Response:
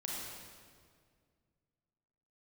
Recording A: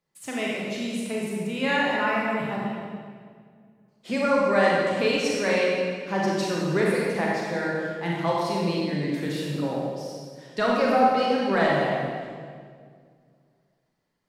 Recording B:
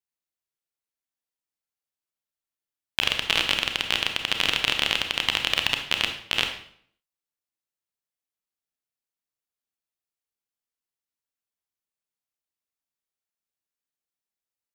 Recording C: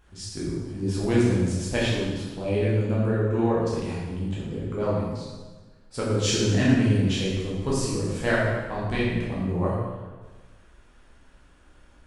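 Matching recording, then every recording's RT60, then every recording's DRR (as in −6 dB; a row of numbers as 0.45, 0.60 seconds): A; 2.0, 0.60, 1.3 seconds; −4.5, 4.5, −7.0 decibels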